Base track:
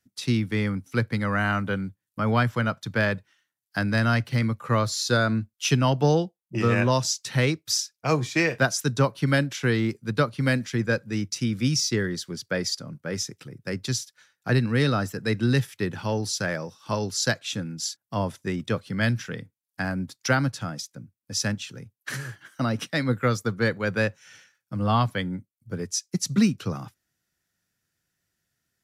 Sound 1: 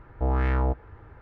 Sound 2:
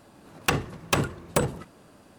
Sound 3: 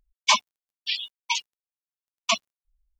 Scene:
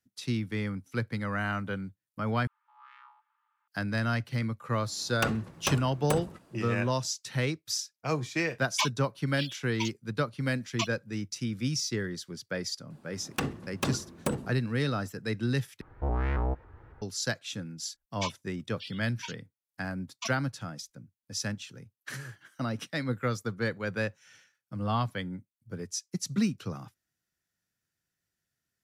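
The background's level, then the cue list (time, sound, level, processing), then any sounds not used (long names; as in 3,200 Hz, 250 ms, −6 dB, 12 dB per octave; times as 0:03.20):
base track −7 dB
0:02.47: overwrite with 1 −14 dB + Chebyshev high-pass with heavy ripple 850 Hz, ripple 9 dB
0:04.74: mix in 2 −7 dB
0:08.50: mix in 3 −9 dB + mu-law and A-law mismatch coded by A
0:12.90: mix in 2 −9 dB + parametric band 240 Hz +8 dB 1 octave
0:15.81: overwrite with 1 −5 dB + pitch modulation by a square or saw wave saw up 3.6 Hz, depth 160 cents
0:17.93: mix in 3 −16 dB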